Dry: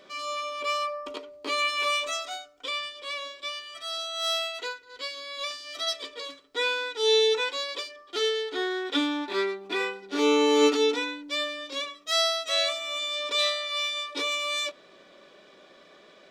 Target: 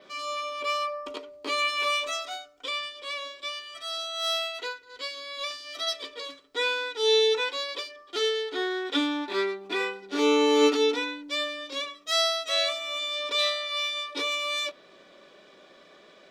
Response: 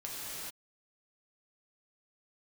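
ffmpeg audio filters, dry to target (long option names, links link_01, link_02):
-af "adynamicequalizer=threshold=0.00224:dfrequency=7500:dqfactor=2.3:tfrequency=7500:tqfactor=2.3:attack=5:release=100:ratio=0.375:range=2.5:mode=cutabove:tftype=bell"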